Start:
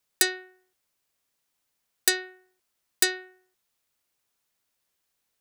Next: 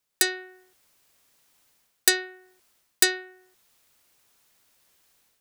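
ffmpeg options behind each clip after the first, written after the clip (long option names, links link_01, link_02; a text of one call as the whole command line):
ffmpeg -i in.wav -af "dynaudnorm=framelen=120:gausssize=5:maxgain=14dB,volume=-1dB" out.wav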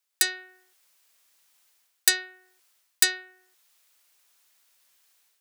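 ffmpeg -i in.wav -af "highpass=frequency=1200:poles=1" out.wav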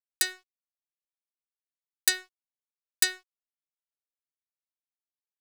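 ffmpeg -i in.wav -af "aeval=exprs='sgn(val(0))*max(abs(val(0))-0.00891,0)':channel_layout=same,volume=-3dB" out.wav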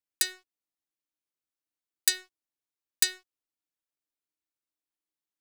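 ffmpeg -i in.wav -filter_complex "[0:a]equalizer=frequency=310:width=5.3:gain=12.5,acrossover=split=220|2200[link_01][link_02][link_03];[link_02]acompressor=threshold=-40dB:ratio=6[link_04];[link_01][link_04][link_03]amix=inputs=3:normalize=0" out.wav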